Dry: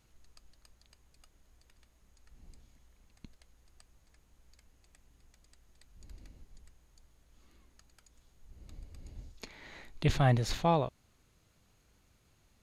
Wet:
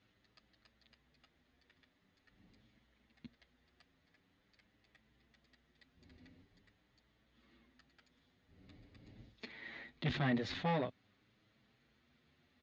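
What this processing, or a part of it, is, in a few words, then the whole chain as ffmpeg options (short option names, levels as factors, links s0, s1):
barber-pole flanger into a guitar amplifier: -filter_complex "[0:a]asplit=2[s0][s1];[s1]adelay=7.7,afreqshift=0.46[s2];[s0][s2]amix=inputs=2:normalize=1,asoftclip=type=tanh:threshold=0.0316,highpass=110,equalizer=f=250:t=q:w=4:g=7,equalizer=f=960:t=q:w=4:g=-3,equalizer=f=1900:t=q:w=4:g=7,equalizer=f=3500:t=q:w=4:g=4,lowpass=f=4500:w=0.5412,lowpass=f=4500:w=1.3066"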